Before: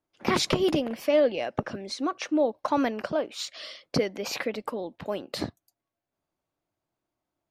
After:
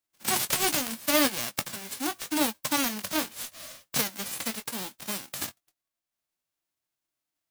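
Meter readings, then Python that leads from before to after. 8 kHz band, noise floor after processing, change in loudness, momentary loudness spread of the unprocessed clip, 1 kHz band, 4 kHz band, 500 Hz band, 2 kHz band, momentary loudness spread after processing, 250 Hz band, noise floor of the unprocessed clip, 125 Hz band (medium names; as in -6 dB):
+11.0 dB, under -85 dBFS, 0.0 dB, 12 LU, -1.5 dB, +3.0 dB, -9.5 dB, +3.0 dB, 11 LU, -3.5 dB, under -85 dBFS, -7.5 dB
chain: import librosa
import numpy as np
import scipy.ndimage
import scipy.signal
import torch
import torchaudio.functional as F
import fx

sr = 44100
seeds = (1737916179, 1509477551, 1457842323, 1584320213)

y = fx.envelope_flatten(x, sr, power=0.1)
y = fx.chorus_voices(y, sr, voices=2, hz=0.77, base_ms=18, depth_ms=4.8, mix_pct=25)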